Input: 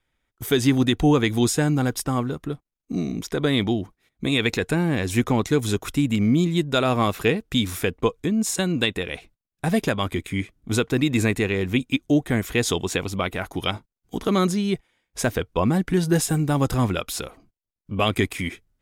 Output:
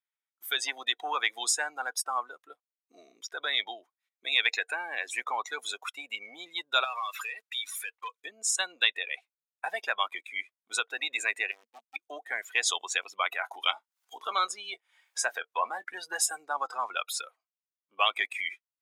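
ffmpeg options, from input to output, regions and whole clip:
-filter_complex "[0:a]asettb=1/sr,asplit=3[a][b][c];[a]atrim=end=6.844[d];[b]atrim=start=6.84:end=8.22,asetpts=PTS-STARTPTS,afade=t=in:d=0.004:c=qsin,afade=t=out:st=1.376:d=0.004:c=qsin,tiltshelf=f=630:g=-9.5,acompressor=threshold=-26dB:ratio=5:attack=3.2:release=140:knee=1:detection=peak,asoftclip=type=hard:threshold=-27dB[e];[c]atrim=start=8.216[f];[d][e]acrossfade=d=0.004:c1=hsin:c2=qsin[g];[g][f]acrossfade=d=0.004:c1=qsin:c2=hsin,asettb=1/sr,asplit=3[h][i][j];[h]atrim=end=11.514[k];[i]atrim=start=11.51:end=11.96,asetpts=PTS-STARTPTS,afade=t=in:d=0.004:c=qsin,afade=t=out:st=0.446:d=0.004:c=qsin,acrusher=bits=2:mix=0:aa=0.5,equalizer=f=230:w=4.6:g=13,aeval=exprs='(tanh(31.6*val(0)+0.6)-tanh(0.6))/31.6':c=same[l];[j]atrim=start=11.956[m];[k][l]acrossfade=d=0.004:c1=hsin:c2=qsin[n];[n][m]acrossfade=d=0.004:c1=qsin:c2=hsin,asettb=1/sr,asplit=3[o][p][q];[o]atrim=end=13.324[r];[p]atrim=start=13.32:end=15.88,asetpts=PTS-STARTPTS,afade=t=in:d=0.004:c=qsin,afade=t=out:st=2.556:d=0.004:c=qsin,acompressor=mode=upward:threshold=-23dB:ratio=2.5:attack=3.2:release=140:knee=2.83:detection=peak,asplit=2[s][t];[t]adelay=24,volume=-14dB[u];[s][u]amix=inputs=2:normalize=0,atrim=end_sample=112896[v];[q]atrim=start=15.876[w];[r][v]acrossfade=d=0.004:c1=hsin:c2=qsin[x];[x][w]acrossfade=d=0.004:c1=qsin:c2=hsin,asettb=1/sr,asplit=3[y][z][aa];[y]atrim=end=16.454[ab];[z]atrim=start=16.45:end=16.97,asetpts=PTS-STARTPTS,afade=t=in:d=0.004:c=qsin,afade=t=out:st=0.516:d=0.004:c=qsin,lowpass=7.6k,equalizer=f=3k:w=2.1:g=-3.5[ac];[aa]atrim=start=16.966[ad];[ab][ac]acrossfade=d=0.004:c1=hsin:c2=qsin[ae];[ae][ad]acrossfade=d=0.004:c1=qsin:c2=hsin,acontrast=88,afftdn=nr=21:nf=-24,highpass=f=830:w=0.5412,highpass=f=830:w=1.3066,volume=-6dB"

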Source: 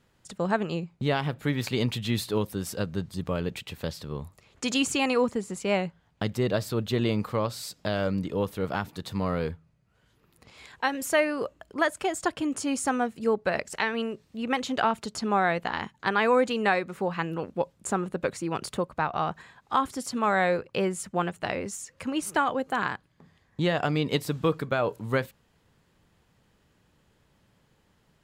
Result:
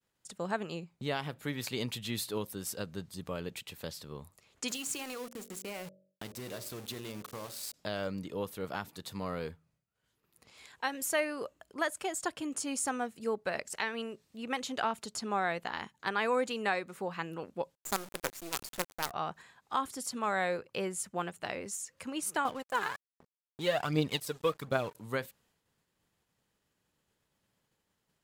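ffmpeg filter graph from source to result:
-filter_complex "[0:a]asettb=1/sr,asplit=3[a][b][c];[a]atrim=end=4.684[d];[b]atrim=start=4.68:end=7.74,asetpts=PTS-STARTPTS,afade=t=in:d=0.004:c=qsin,afade=t=out:st=3.056:d=0.004:c=qsin,acompressor=threshold=-28dB:ratio=8:attack=3.2:release=140:knee=1:detection=peak,aeval=exprs='val(0)*gte(abs(val(0)),0.0133)':c=same,bandreject=f=47.18:t=h:w=4,bandreject=f=94.36:t=h:w=4,bandreject=f=141.54:t=h:w=4,bandreject=f=188.72:t=h:w=4,bandreject=f=235.9:t=h:w=4,bandreject=f=283.08:t=h:w=4,bandreject=f=330.26:t=h:w=4,bandreject=f=377.44:t=h:w=4,bandreject=f=424.62:t=h:w=4,bandreject=f=471.8:t=h:w=4,bandreject=f=518.98:t=h:w=4,bandreject=f=566.16:t=h:w=4,bandreject=f=613.34:t=h:w=4,bandreject=f=660.52:t=h:w=4[e];[c]atrim=start=7.736[f];[d][e]acrossfade=d=0.004:c1=hsin:c2=qsin[g];[g][f]acrossfade=d=0.004:c1=qsin:c2=hsin,asettb=1/sr,asplit=3[h][i][j];[h]atrim=end=17.754[k];[i]atrim=start=17.75:end=19.11,asetpts=PTS-STARTPTS,afade=t=in:d=0.004:c=qsin,afade=t=out:st=1.356:d=0.004:c=qsin,lowpass=f=8.4k:w=0.5412,lowpass=f=8.4k:w=1.3066,acrusher=bits=4:dc=4:mix=0:aa=0.000001[l];[j]atrim=start=19.106[m];[k][l]acrossfade=d=0.004:c1=hsin:c2=qsin[n];[n][m]acrossfade=d=0.004:c1=qsin:c2=hsin,asettb=1/sr,asplit=3[o][p][q];[o]atrim=end=22.454[r];[p]atrim=start=22.45:end=24.95,asetpts=PTS-STARTPTS,afade=t=in:d=0.004:c=qsin,afade=t=out:st=2.496:d=0.004:c=qsin,aphaser=in_gain=1:out_gain=1:delay=2.5:decay=0.65:speed=1.3:type=triangular,aeval=exprs='sgn(val(0))*max(abs(val(0))-0.00631,0)':c=same[s];[q]atrim=start=24.946[t];[r][s]acrossfade=d=0.004:c1=hsin:c2=qsin[u];[u][t]acrossfade=d=0.004:c1=qsin:c2=hsin,equalizer=f=13k:w=0.31:g=8.5,agate=range=-33dB:threshold=-59dB:ratio=3:detection=peak,lowshelf=f=160:g=-7,volume=-7.5dB"

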